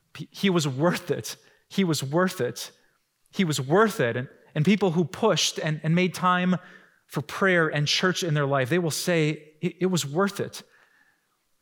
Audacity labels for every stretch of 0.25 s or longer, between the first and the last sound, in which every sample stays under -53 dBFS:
2.860000	3.260000	silence